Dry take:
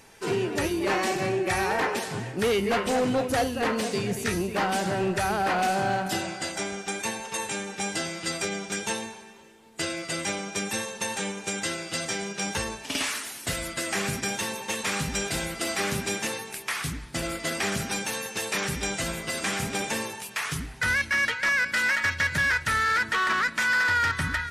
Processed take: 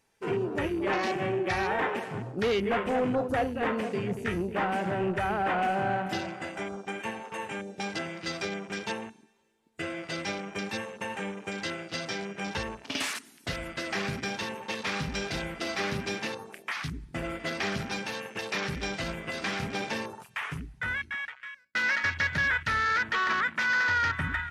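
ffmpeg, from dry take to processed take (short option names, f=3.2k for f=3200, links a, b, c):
-filter_complex "[0:a]asplit=2[a][b];[a]atrim=end=21.75,asetpts=PTS-STARTPTS,afade=t=out:st=20.38:d=1.37[c];[b]atrim=start=21.75,asetpts=PTS-STARTPTS,afade=t=in:d=0.004:c=hsin[d];[c][d]concat=n=2:v=0:a=1,afwtdn=0.0158,volume=-2.5dB"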